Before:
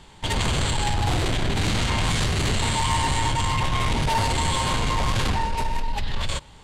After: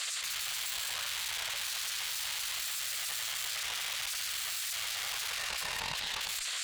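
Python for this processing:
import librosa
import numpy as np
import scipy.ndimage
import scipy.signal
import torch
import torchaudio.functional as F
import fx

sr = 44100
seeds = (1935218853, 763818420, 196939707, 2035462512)

p1 = fx.tracing_dist(x, sr, depth_ms=0.12)
p2 = fx.low_shelf(p1, sr, hz=280.0, db=11.0)
p3 = np.clip(p2, -10.0 ** (-21.5 / 20.0), 10.0 ** (-21.5 / 20.0))
p4 = p2 + F.gain(torch.from_numpy(p3), 2.0).numpy()
p5 = fx.spec_gate(p4, sr, threshold_db=-30, keep='weak')
p6 = fx.tube_stage(p5, sr, drive_db=33.0, bias=0.7)
p7 = fx.highpass(p6, sr, hz=68.0, slope=6)
p8 = fx.tone_stack(p7, sr, knobs='10-0-10')
p9 = fx.env_flatten(p8, sr, amount_pct=100)
y = F.gain(torch.from_numpy(p9), 1.0).numpy()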